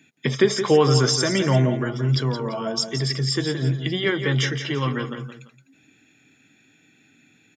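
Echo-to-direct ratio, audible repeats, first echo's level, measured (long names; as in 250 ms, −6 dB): −8.5 dB, 2, −9.0 dB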